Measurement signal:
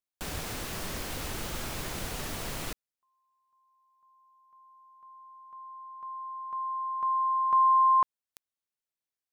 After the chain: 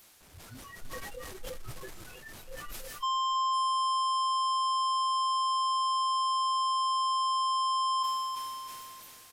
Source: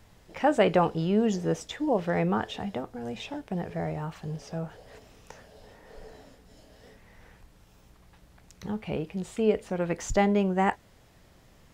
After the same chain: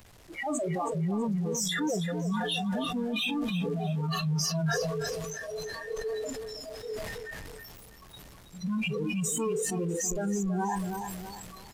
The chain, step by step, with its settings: one-bit comparator; resampled via 32 kHz; in parallel at -1.5 dB: peak limiter -35.5 dBFS; on the sum: spectral noise reduction 27 dB; on a send: feedback delay 324 ms, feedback 33%, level -10 dB; on the sum: decay stretcher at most 20 dB/s

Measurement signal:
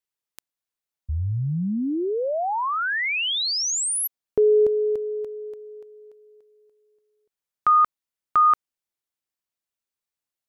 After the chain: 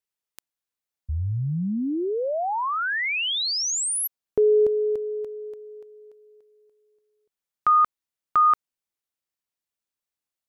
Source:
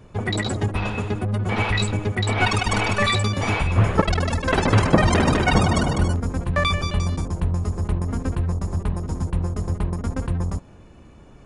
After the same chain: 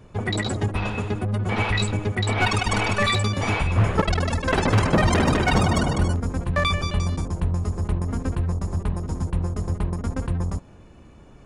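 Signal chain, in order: overload inside the chain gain 11 dB; trim -1 dB

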